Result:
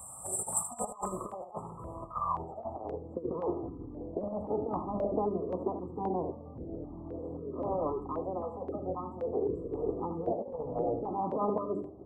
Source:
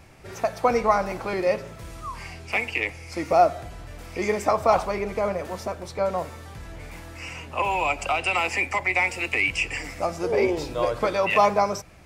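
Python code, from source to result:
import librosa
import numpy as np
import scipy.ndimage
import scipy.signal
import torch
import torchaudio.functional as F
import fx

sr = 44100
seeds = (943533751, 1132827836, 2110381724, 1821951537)

y = scipy.signal.sosfilt(scipy.signal.butter(2, 62.0, 'highpass', fs=sr, output='sos'), x)
y = fx.low_shelf(y, sr, hz=370.0, db=-10.5)
y = fx.hum_notches(y, sr, base_hz=50, count=9)
y = fx.filter_sweep_lowpass(y, sr, from_hz=6000.0, to_hz=280.0, start_s=0.78, end_s=3.0, q=6.0)
y = fx.over_compress(y, sr, threshold_db=-33.0, ratio=-0.5)
y = fx.formant_shift(y, sr, semitones=6)
y = fx.brickwall_bandstop(y, sr, low_hz=1300.0, high_hz=7300.0)
y = fx.high_shelf(y, sr, hz=7100.0, db=4.5)
y = y + 10.0 ** (-9.5 / 20.0) * np.pad(y, (int(78 * sr / 1000.0), 0))[:len(y)]
y = fx.filter_held_notch(y, sr, hz=3.8, low_hz=370.0, high_hz=2300.0)
y = y * 10.0 ** (3.0 / 20.0)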